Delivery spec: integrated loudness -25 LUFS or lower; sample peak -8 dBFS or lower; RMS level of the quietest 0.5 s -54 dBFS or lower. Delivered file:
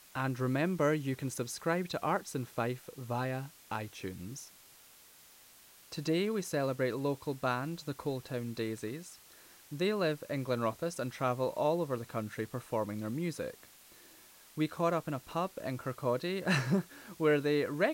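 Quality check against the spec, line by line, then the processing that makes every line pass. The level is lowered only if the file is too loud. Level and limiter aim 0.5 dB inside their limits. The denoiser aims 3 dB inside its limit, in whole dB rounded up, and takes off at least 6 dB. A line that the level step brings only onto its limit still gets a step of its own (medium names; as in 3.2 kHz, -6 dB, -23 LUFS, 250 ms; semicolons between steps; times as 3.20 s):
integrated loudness -34.5 LUFS: pass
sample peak -17.5 dBFS: pass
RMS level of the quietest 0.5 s -59 dBFS: pass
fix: none needed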